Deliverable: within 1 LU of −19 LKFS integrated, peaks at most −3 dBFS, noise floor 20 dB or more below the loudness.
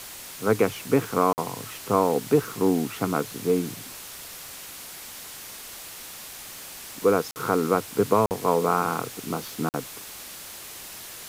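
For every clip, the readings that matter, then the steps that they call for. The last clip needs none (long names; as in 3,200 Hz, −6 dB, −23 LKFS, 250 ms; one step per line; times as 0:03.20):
number of dropouts 4; longest dropout 49 ms; background noise floor −41 dBFS; target noise floor −45 dBFS; integrated loudness −25.0 LKFS; sample peak −7.5 dBFS; target loudness −19.0 LKFS
→ repair the gap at 0:01.33/0:07.31/0:08.26/0:09.69, 49 ms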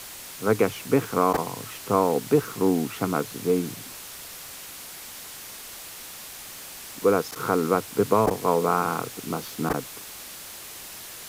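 number of dropouts 0; background noise floor −41 dBFS; target noise floor −45 dBFS
→ broadband denoise 6 dB, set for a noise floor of −41 dBFS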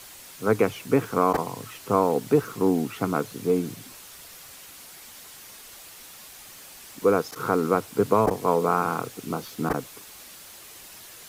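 background noise floor −46 dBFS; integrated loudness −25.0 LKFS; sample peak −8.0 dBFS; target loudness −19.0 LKFS
→ level +6 dB
brickwall limiter −3 dBFS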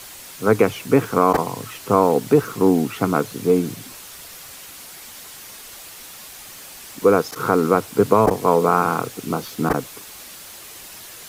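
integrated loudness −19.0 LKFS; sample peak −3.0 dBFS; background noise floor −40 dBFS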